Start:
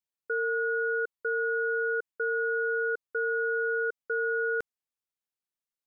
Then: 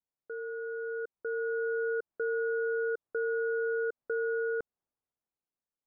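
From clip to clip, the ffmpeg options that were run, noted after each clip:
-af "alimiter=level_in=8.5dB:limit=-24dB:level=0:latency=1:release=142,volume=-8.5dB,lowpass=1k,dynaudnorm=f=270:g=9:m=7.5dB,volume=2.5dB"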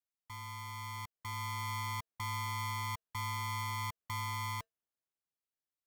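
-filter_complex "[0:a]equalizer=f=99:t=o:w=0.3:g=6.5,acrossover=split=220[a][b];[a]acrusher=samples=39:mix=1:aa=0.000001:lfo=1:lforange=62.4:lforate=3.3[c];[c][b]amix=inputs=2:normalize=0,aeval=exprs='val(0)*sgn(sin(2*PI*560*n/s))':c=same,volume=-6.5dB"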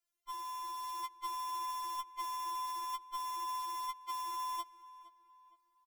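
-filter_complex "[0:a]alimiter=level_in=11.5dB:limit=-24dB:level=0:latency=1:release=86,volume=-11.5dB,asplit=2[a][b];[b]adelay=464,lowpass=f=2.7k:p=1,volume=-16dB,asplit=2[c][d];[d]adelay=464,lowpass=f=2.7k:p=1,volume=0.43,asplit=2[e][f];[f]adelay=464,lowpass=f=2.7k:p=1,volume=0.43,asplit=2[g][h];[h]adelay=464,lowpass=f=2.7k:p=1,volume=0.43[i];[a][c][e][g][i]amix=inputs=5:normalize=0,afftfilt=real='re*4*eq(mod(b,16),0)':imag='im*4*eq(mod(b,16),0)':win_size=2048:overlap=0.75,volume=8.5dB"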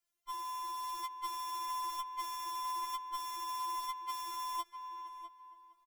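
-filter_complex "[0:a]asplit=2[a][b];[b]adelay=651,lowpass=f=1.8k:p=1,volume=-8dB,asplit=2[c][d];[d]adelay=651,lowpass=f=1.8k:p=1,volume=0.2,asplit=2[e][f];[f]adelay=651,lowpass=f=1.8k:p=1,volume=0.2[g];[a][c][e][g]amix=inputs=4:normalize=0,volume=1.5dB"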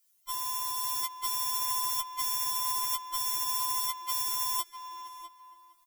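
-af "crystalizer=i=5:c=0"

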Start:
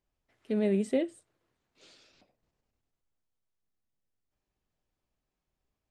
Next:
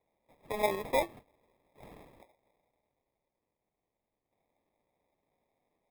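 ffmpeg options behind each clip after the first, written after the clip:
-af "highpass=f=890:t=q:w=4.4,acrusher=samples=30:mix=1:aa=0.000001,equalizer=f=6.1k:w=1.2:g=-11.5,volume=6dB"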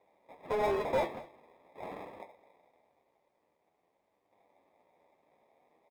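-filter_complex "[0:a]flanger=delay=9.7:depth=4.1:regen=54:speed=0.46:shape=triangular,asplit=2[a][b];[b]highpass=f=720:p=1,volume=26dB,asoftclip=type=tanh:threshold=-21dB[c];[a][c]amix=inputs=2:normalize=0,lowpass=f=1.2k:p=1,volume=-6dB,aecho=1:1:211:0.1"

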